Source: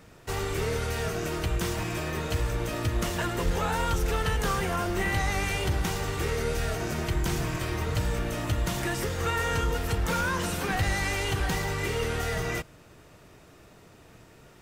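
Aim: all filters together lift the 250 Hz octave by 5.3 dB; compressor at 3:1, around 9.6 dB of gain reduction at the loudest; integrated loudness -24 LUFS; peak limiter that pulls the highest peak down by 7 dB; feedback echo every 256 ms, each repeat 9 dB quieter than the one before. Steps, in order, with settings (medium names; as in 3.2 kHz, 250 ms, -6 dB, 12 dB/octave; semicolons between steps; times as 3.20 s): peaking EQ 250 Hz +8 dB; compression 3:1, threshold -35 dBFS; peak limiter -30.5 dBFS; feedback delay 256 ms, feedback 35%, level -9 dB; trim +15 dB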